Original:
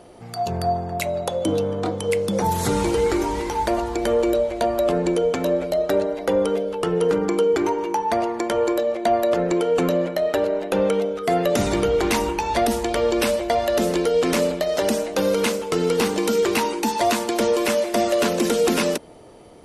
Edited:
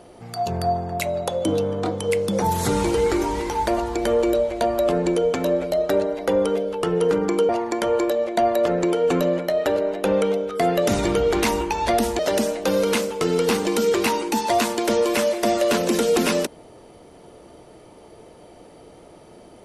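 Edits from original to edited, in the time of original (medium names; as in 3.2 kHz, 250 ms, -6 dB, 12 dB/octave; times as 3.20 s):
7.49–8.17 s: delete
12.87–14.70 s: delete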